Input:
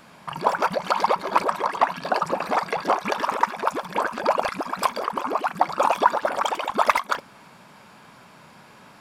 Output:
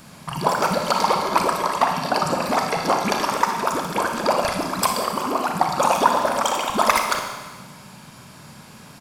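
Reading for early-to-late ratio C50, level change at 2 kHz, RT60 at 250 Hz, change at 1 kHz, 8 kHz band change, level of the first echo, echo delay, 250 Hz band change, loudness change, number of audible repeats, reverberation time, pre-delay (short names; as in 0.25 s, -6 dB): 4.5 dB, +2.0 dB, 1.4 s, +2.0 dB, +11.5 dB, -11.0 dB, 59 ms, +7.0 dB, +2.5 dB, 1, 1.4 s, 31 ms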